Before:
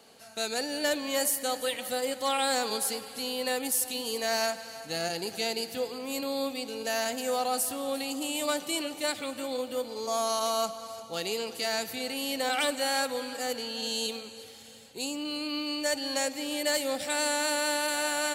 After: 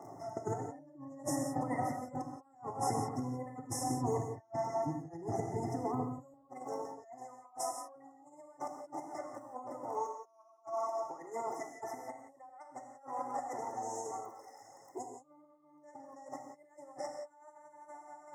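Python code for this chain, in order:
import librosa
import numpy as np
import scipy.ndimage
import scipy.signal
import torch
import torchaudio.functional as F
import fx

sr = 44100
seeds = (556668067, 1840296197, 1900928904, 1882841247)

y = fx.octave_divider(x, sr, octaves=1, level_db=-4.0)
y = fx.spacing_loss(y, sr, db_at_10k=23)
y = fx.dmg_crackle(y, sr, seeds[0], per_s=38.0, level_db=-50.0)
y = fx.brickwall_bandstop(y, sr, low_hz=2100.0, high_hz=5100.0)
y = fx.high_shelf(y, sr, hz=6200.0, db=-10.0)
y = fx.fixed_phaser(y, sr, hz=320.0, stages=8)
y = fx.over_compress(y, sr, threshold_db=-45.0, ratio=-0.5)
y = fx.dereverb_blind(y, sr, rt60_s=1.4)
y = fx.highpass(y, sr, hz=fx.steps((0.0, 120.0), (6.34, 580.0)), slope=12)
y = fx.rev_gated(y, sr, seeds[1], gate_ms=200, shape='flat', drr_db=3.0)
y = F.gain(torch.from_numpy(y), 7.0).numpy()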